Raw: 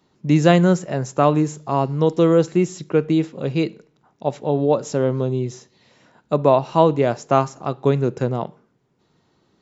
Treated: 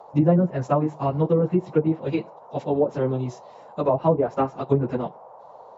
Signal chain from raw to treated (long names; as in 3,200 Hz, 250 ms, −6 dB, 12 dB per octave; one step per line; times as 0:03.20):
noise in a band 460–1,000 Hz −42 dBFS
time stretch by phase vocoder 0.6×
treble cut that deepens with the level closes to 720 Hz, closed at −14.5 dBFS